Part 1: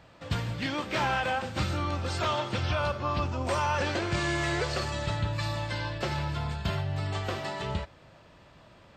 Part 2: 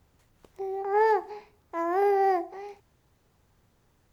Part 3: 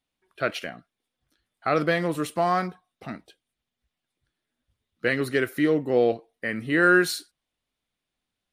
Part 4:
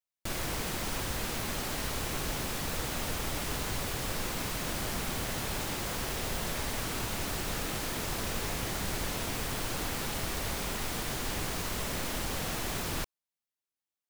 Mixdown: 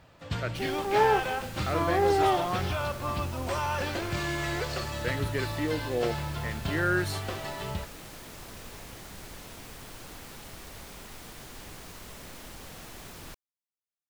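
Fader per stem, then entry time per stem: -2.5, -1.0, -9.0, -10.5 dB; 0.00, 0.00, 0.00, 0.30 s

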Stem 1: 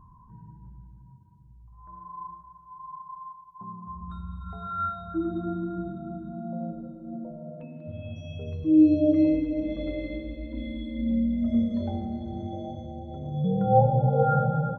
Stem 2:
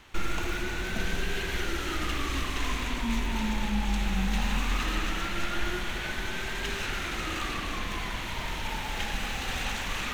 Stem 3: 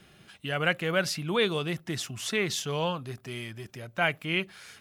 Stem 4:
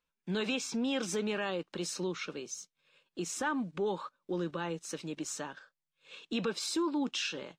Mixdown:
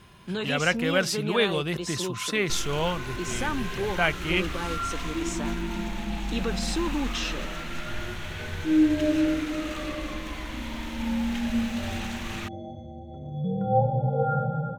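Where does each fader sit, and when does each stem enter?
-3.0, -4.0, +2.0, +2.5 dB; 0.00, 2.35, 0.00, 0.00 s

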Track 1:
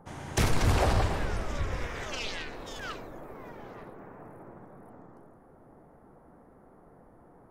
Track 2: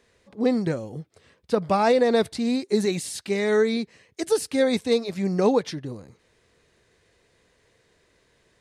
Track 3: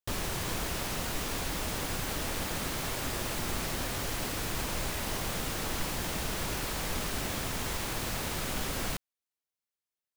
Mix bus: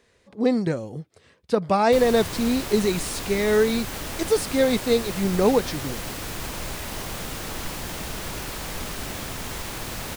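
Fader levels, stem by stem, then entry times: off, +1.0 dB, +1.5 dB; off, 0.00 s, 1.85 s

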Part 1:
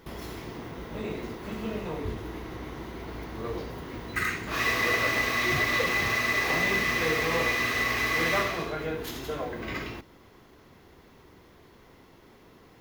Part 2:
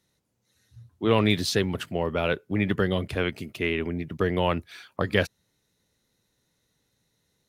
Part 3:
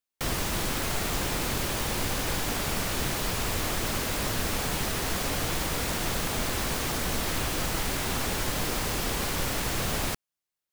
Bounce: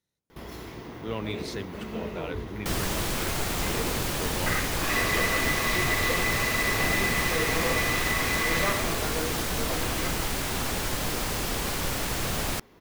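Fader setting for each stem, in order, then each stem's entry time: -1.5, -12.0, 0.0 dB; 0.30, 0.00, 2.45 s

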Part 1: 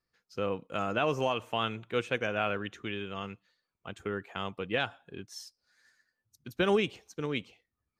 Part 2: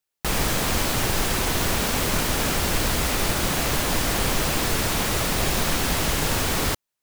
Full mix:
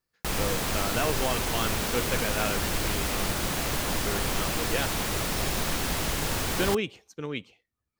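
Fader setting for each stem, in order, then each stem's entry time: -0.5, -5.5 dB; 0.00, 0.00 s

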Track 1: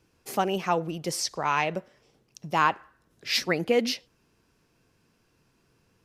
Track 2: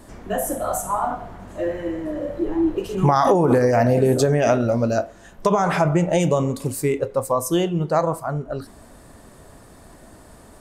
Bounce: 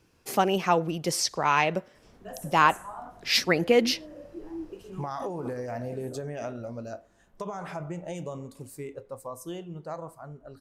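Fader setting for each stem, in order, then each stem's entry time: +2.5, -17.5 dB; 0.00, 1.95 s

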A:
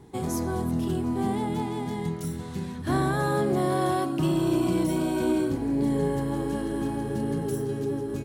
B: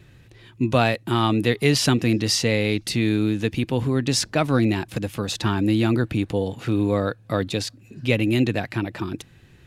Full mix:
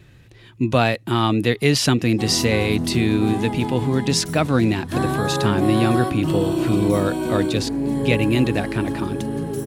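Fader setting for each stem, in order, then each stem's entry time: +2.5, +1.5 dB; 2.05, 0.00 s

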